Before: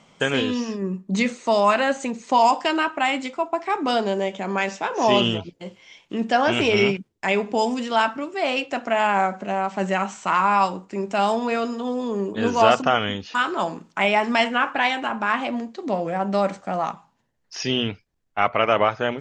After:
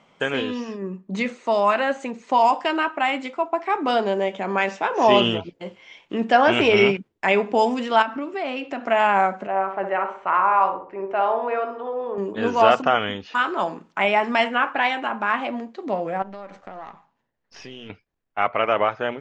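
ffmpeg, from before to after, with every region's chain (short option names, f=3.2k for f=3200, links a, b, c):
-filter_complex "[0:a]asettb=1/sr,asplit=3[a][b][c];[a]atrim=end=8.024[d];[b]atrim=start=8.02:end=8.86,asetpts=PTS-STARTPTS,afade=t=in:d=0.004:c=qsin,afade=t=out:st=0.836:d=0.004:c=qsin,lowpass=7.2k,equalizer=f=260:w=3.7:g=7,acompressor=threshold=-26dB:ratio=4:attack=3.2:release=140:knee=1:detection=peak[e];[c]atrim=start=8.856[f];[d][e]acrossfade=d=0.004:c1=hsin:c2=qsin[g];[g][f]acrossfade=d=0.004:c1=qsin:c2=hsin,asettb=1/sr,asplit=3[h][i][j];[h]atrim=end=9.474[k];[i]atrim=start=9.47:end=12.18,asetpts=PTS-STARTPTS,afade=t=in:d=0.004:c=qsin,afade=t=out:st=2.706:d=0.004:c=qsin,lowpass=1.8k,equalizer=f=220:t=o:w=0.74:g=-15,asplit=2[l][m];[m]adelay=62,lowpass=f=1.3k:p=1,volume=-5.5dB,asplit=2[n][o];[o]adelay=62,lowpass=f=1.3k:p=1,volume=0.47,asplit=2[p][q];[q]adelay=62,lowpass=f=1.3k:p=1,volume=0.47,asplit=2[r][s];[s]adelay=62,lowpass=f=1.3k:p=1,volume=0.47,asplit=2[t][u];[u]adelay=62,lowpass=f=1.3k:p=1,volume=0.47,asplit=2[v][w];[w]adelay=62,lowpass=f=1.3k:p=1,volume=0.47[x];[l][n][p][r][t][v][x]amix=inputs=7:normalize=0,atrim=end_sample=119511[y];[j]atrim=start=12.176[z];[k][y]acrossfade=d=0.004:c1=hsin:c2=qsin[aa];[aa][z]acrossfade=d=0.004:c1=qsin:c2=hsin,asettb=1/sr,asplit=3[ab][ac][ad];[ab]atrim=end=16.224[ae];[ac]atrim=start=16.22:end=17.9,asetpts=PTS-STARTPTS,afade=t=in:d=0.004:c=qsin,afade=t=out:st=1.676:d=0.004:c=qsin,aeval=exprs='if(lt(val(0),0),0.447*val(0),val(0))':c=same,lowpass=f=7.2k:w=0.5412,lowpass=f=7.2k:w=1.3066,acompressor=threshold=-31dB:ratio=6:attack=3.2:release=140:knee=1:detection=peak[af];[ad]atrim=start=17.896[ag];[ae][af]acrossfade=d=0.004:c1=hsin:c2=qsin[ah];[ah][ag]acrossfade=d=0.004:c1=qsin:c2=hsin,bass=f=250:g=-6,treble=f=4k:g=-11,dynaudnorm=f=750:g=11:m=11.5dB,volume=-1dB"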